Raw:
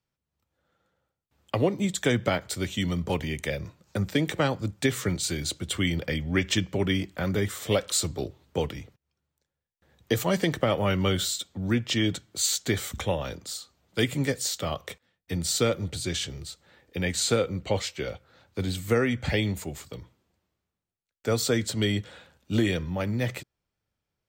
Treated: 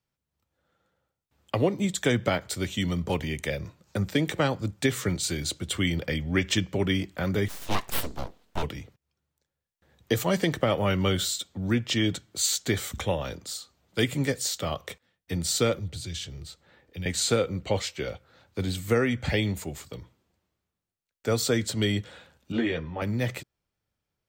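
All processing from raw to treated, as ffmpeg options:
ffmpeg -i in.wav -filter_complex "[0:a]asettb=1/sr,asplit=3[link_01][link_02][link_03];[link_01]atrim=end=7.484[link_04];[link_02]atrim=start=7.48:end=8.63,asetpts=PTS-STARTPTS,afade=type=in:duration=0.004:curve=qsin,afade=type=out:start_time=1.146:duration=0.004:curve=qsin,highpass=90,aeval=exprs='abs(val(0))':channel_layout=same[link_05];[link_03]atrim=start=8.626[link_06];[link_04][link_05]acrossfade=duration=0.004:curve1=hsin:curve2=qsin[link_07];[link_07][link_06]acrossfade=duration=0.004:curve1=qsin:curve2=hsin,asettb=1/sr,asplit=3[link_08][link_09][link_10];[link_08]atrim=end=15.794[link_11];[link_09]atrim=start=15.79:end=17.06,asetpts=PTS-STARTPTS,afade=type=in:duration=0.004:curve=qsin,afade=type=out:start_time=1.266:duration=0.004:curve=qsin,equalizer=frequency=10000:width_type=o:width=2.2:gain=-6.5,acrossover=split=150|3000[link_12][link_13][link_14];[link_13]acompressor=threshold=-46dB:ratio=4:attack=3.2:release=140:knee=2.83:detection=peak[link_15];[link_12][link_15][link_14]amix=inputs=3:normalize=0[link_16];[link_10]atrim=start=17.056[link_17];[link_11][link_16]acrossfade=duration=0.004:curve1=hsin:curve2=qsin[link_18];[link_18][link_17]acrossfade=duration=0.004:curve1=qsin:curve2=hsin,asettb=1/sr,asplit=3[link_19][link_20][link_21];[link_19]atrim=end=22.524[link_22];[link_20]atrim=start=22.52:end=23.02,asetpts=PTS-STARTPTS,afade=type=in:duration=0.004:curve=qsin,afade=type=out:start_time=0.496:duration=0.004:curve=qsin,lowpass=2600,lowshelf=frequency=230:gain=-10.5,asplit=2[link_23][link_24];[link_24]adelay=13,volume=-3dB[link_25];[link_23][link_25]amix=inputs=2:normalize=0,atrim=end_sample=22050[link_26];[link_21]atrim=start=23.016[link_27];[link_22][link_26]acrossfade=duration=0.004:curve1=hsin:curve2=qsin[link_28];[link_28][link_27]acrossfade=duration=0.004:curve1=qsin:curve2=hsin" out.wav

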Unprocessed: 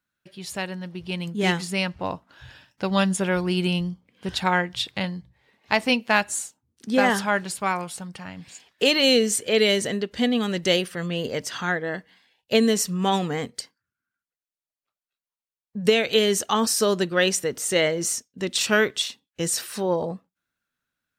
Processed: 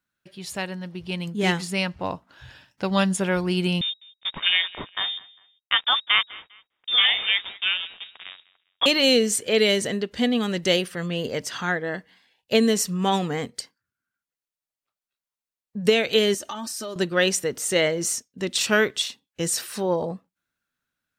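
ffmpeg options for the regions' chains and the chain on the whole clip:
ffmpeg -i in.wav -filter_complex "[0:a]asettb=1/sr,asplit=3[link_01][link_02][link_03];[link_01]atrim=end=3.814[link_04];[link_02]atrim=start=3.81:end=8.86,asetpts=PTS-STARTPTS,afade=type=in:duration=0.004:curve=qsin,afade=type=out:start_time=5.046:duration=0.004:curve=qsin,acrusher=bits=4:mix=0:aa=0.5,aecho=1:1:201|402:0.0794|0.0246,atrim=end_sample=222705,lowpass=frequency=3200:width_type=q:width=0.5098,lowpass=frequency=3200:width_type=q:width=0.6013,lowpass=frequency=3200:width_type=q:width=0.9,lowpass=frequency=3200:width_type=q:width=2.563,afreqshift=-3800[link_05];[link_03]atrim=start=8.856[link_06];[link_04][link_05]acrossfade=duration=0.004:curve1=hsin:curve2=qsin[link_07];[link_07][link_06]acrossfade=duration=0.004:curve1=qsin:curve2=hsin,asettb=1/sr,asplit=3[link_08][link_09][link_10];[link_08]atrim=end=16.344[link_11];[link_09]atrim=start=16.34:end=16.96,asetpts=PTS-STARTPTS,afade=type=in:duration=0.004:curve=qsin,afade=type=out:start_time=0.616:duration=0.004:curve=qsin,aecho=1:1:3.3:0.88,atrim=end_sample=27342,acompressor=threshold=-30dB:ratio=6:attack=3.2:release=140:knee=1:detection=peak[link_12];[link_10]atrim=start=16.956[link_13];[link_11][link_12]acrossfade=duration=0.004:curve1=hsin:curve2=qsin[link_14];[link_14][link_13]acrossfade=duration=0.004:curve1=qsin:curve2=hsin" out.wav

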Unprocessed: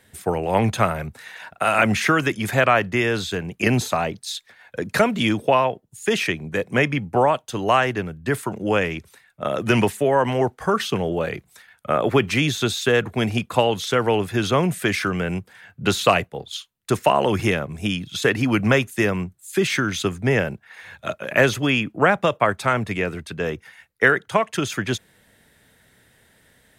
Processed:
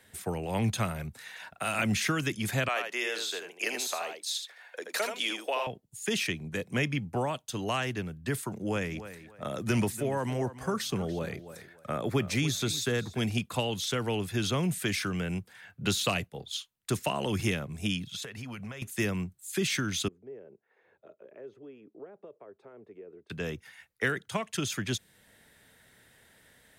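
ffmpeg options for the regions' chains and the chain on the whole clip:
ffmpeg -i in.wav -filter_complex "[0:a]asettb=1/sr,asplit=3[link_01][link_02][link_03];[link_01]atrim=end=2.684[link_04];[link_02]atrim=start=2.68:end=5.67,asetpts=PTS-STARTPTS,afade=type=in:duration=0.004:curve=qsin,afade=type=out:start_time=2.986:duration=0.004:curve=qsin,highpass=frequency=410:width=0.5412,highpass=frequency=410:width=1.3066,aecho=1:1:79:0.473,atrim=end_sample=131859[link_05];[link_03]atrim=start=5.666[link_06];[link_04][link_05]acrossfade=duration=0.004:curve1=hsin:curve2=qsin[link_07];[link_07][link_06]acrossfade=duration=0.004:curve1=qsin:curve2=hsin,asettb=1/sr,asplit=3[link_08][link_09][link_10];[link_08]atrim=end=8.444[link_11];[link_09]atrim=start=8.44:end=13.21,asetpts=PTS-STARTPTS,afade=type=in:duration=0.004:curve=qsin,afade=type=out:start_time=4.766:duration=0.004:curve=qsin,equalizer=frequency=2900:width=3.4:gain=-7.5,asplit=2[link_12][link_13];[link_13]adelay=289,lowpass=frequency=4300:poles=1,volume=-15dB,asplit=2[link_14][link_15];[link_15]adelay=289,lowpass=frequency=4300:poles=1,volume=0.17[link_16];[link_12][link_14][link_16]amix=inputs=3:normalize=0,atrim=end_sample=210357[link_17];[link_10]atrim=start=13.206[link_18];[link_11][link_17]acrossfade=duration=0.004:curve1=hsin:curve2=qsin[link_19];[link_19][link_18]acrossfade=duration=0.004:curve1=qsin:curve2=hsin,asettb=1/sr,asplit=3[link_20][link_21][link_22];[link_20]atrim=end=18.054[link_23];[link_21]atrim=start=18.05:end=18.82,asetpts=PTS-STARTPTS,afade=type=in:duration=0.004:curve=qsin,afade=type=out:start_time=0.766:duration=0.004:curve=qsin,equalizer=frequency=310:width=4.2:gain=-12.5,acompressor=threshold=-30dB:ratio=16:attack=3.2:release=140:knee=1:detection=peak[link_24];[link_22]atrim=start=18.816[link_25];[link_23][link_24]acrossfade=duration=0.004:curve1=hsin:curve2=qsin[link_26];[link_26][link_25]acrossfade=duration=0.004:curve1=qsin:curve2=hsin,asettb=1/sr,asplit=3[link_27][link_28][link_29];[link_27]atrim=end=20.084[link_30];[link_28]atrim=start=20.08:end=23.3,asetpts=PTS-STARTPTS,afade=type=in:duration=0.004:curve=qsin,afade=type=out:start_time=3.216:duration=0.004:curve=qsin,acompressor=threshold=-36dB:ratio=2:attack=3.2:release=140:knee=1:detection=peak,bandpass=frequency=410:width_type=q:width=4.3[link_31];[link_29]atrim=start=23.296[link_32];[link_30][link_31]acrossfade=duration=0.004:curve1=hsin:curve2=qsin[link_33];[link_33][link_32]acrossfade=duration=0.004:curve1=qsin:curve2=hsin,deesser=0.45,lowshelf=frequency=380:gain=-4,acrossover=split=280|3000[link_34][link_35][link_36];[link_35]acompressor=threshold=-50dB:ratio=1.5[link_37];[link_34][link_37][link_36]amix=inputs=3:normalize=0,volume=-2.5dB" out.wav

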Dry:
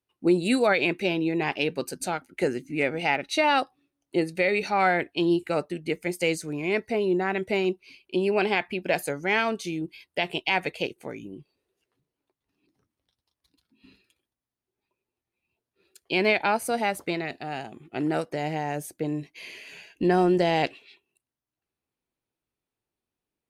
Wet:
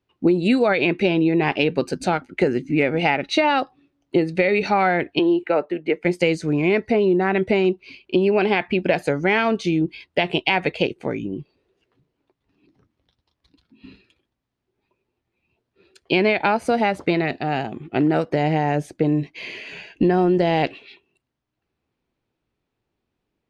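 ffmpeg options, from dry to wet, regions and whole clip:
ffmpeg -i in.wav -filter_complex "[0:a]asettb=1/sr,asplit=3[link_01][link_02][link_03];[link_01]atrim=end=5.194[link_04];[link_02]atrim=start=5.19:end=6.05,asetpts=PTS-STARTPTS,afade=type=in:duration=0.004:curve=qsin,afade=type=out:start_time=0.856:duration=0.004:curve=qsin,acrossover=split=310 2900:gain=0.126 1 0.158[link_05][link_06][link_07];[link_05][link_06][link_07]amix=inputs=3:normalize=0,bandreject=frequency=1200:width=15[link_08];[link_03]atrim=start=6.046[link_09];[link_04][link_08]acrossfade=duration=0.004:curve1=hsin:curve2=qsin[link_10];[link_10][link_09]acrossfade=duration=0.004:curve1=qsin:curve2=hsin,lowpass=4200,lowshelf=frequency=440:gain=5,acompressor=threshold=-23dB:ratio=6,volume=8.5dB" out.wav

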